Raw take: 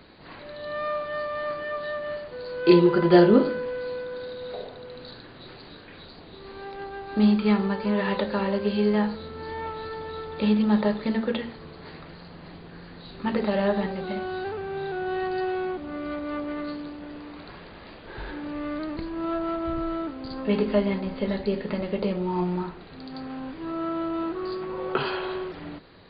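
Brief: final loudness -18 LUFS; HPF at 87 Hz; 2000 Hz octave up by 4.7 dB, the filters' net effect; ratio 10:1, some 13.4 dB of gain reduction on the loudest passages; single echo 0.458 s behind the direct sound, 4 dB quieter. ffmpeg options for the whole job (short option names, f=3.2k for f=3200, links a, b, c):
-af "highpass=87,equalizer=f=2k:t=o:g=6,acompressor=threshold=-24dB:ratio=10,aecho=1:1:458:0.631,volume=11.5dB"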